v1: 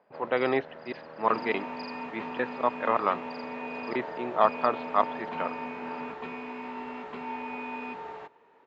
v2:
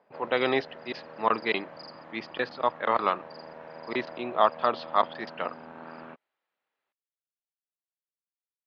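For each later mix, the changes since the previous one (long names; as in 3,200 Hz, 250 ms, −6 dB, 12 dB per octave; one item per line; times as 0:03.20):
speech: remove moving average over 9 samples
second sound: muted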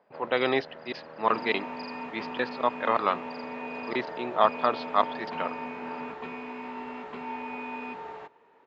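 second sound: unmuted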